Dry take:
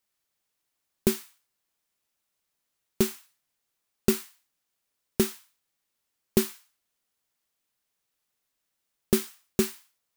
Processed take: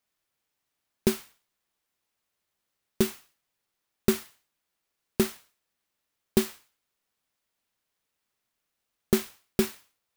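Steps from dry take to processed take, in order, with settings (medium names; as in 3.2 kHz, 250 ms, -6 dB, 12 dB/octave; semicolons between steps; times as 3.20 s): sampling jitter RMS 0.037 ms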